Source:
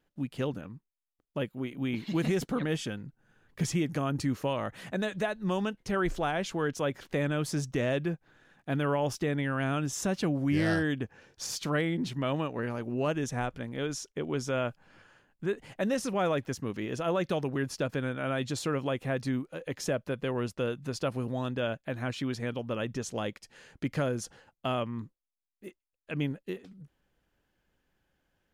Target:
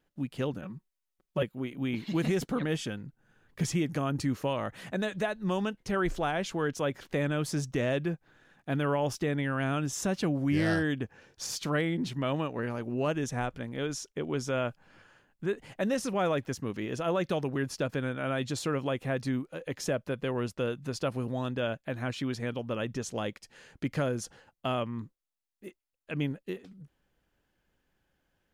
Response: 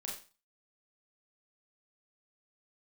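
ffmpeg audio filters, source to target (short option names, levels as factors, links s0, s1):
-filter_complex "[0:a]asettb=1/sr,asplit=3[s0][s1][s2];[s0]atrim=end=0.624[s3];[s1]atrim=start=0.62:end=1.43,asetpts=PTS-STARTPTS,afade=t=in:d=0.004:c=qsin,afade=t=out:st=0.806:d=0.004:c=qsin,aecho=1:1:5.4:0.97,atrim=end_sample=35721[s4];[s2]atrim=start=1.426[s5];[s3][s4]acrossfade=d=0.004:c1=hsin:c2=qsin[s6];[s6][s5]acrossfade=d=0.004:c1=qsin:c2=hsin"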